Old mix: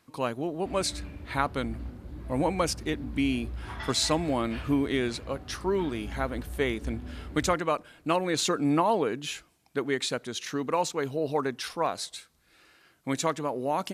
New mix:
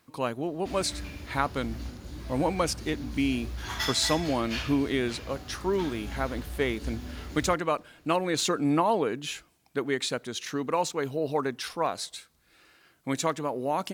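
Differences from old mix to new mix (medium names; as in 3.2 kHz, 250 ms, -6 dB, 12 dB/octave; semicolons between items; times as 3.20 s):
background: remove tape spacing loss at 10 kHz 38 dB; master: remove brick-wall FIR low-pass 14 kHz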